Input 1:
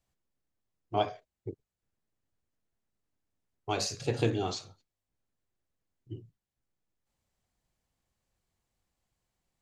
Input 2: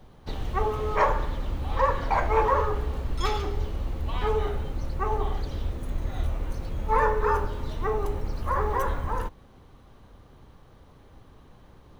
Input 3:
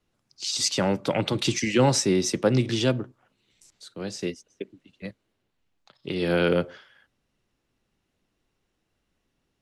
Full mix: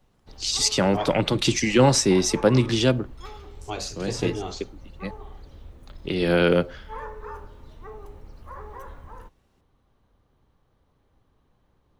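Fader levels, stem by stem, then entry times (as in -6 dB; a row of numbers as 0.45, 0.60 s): -0.5, -14.0, +3.0 dB; 0.00, 0.00, 0.00 s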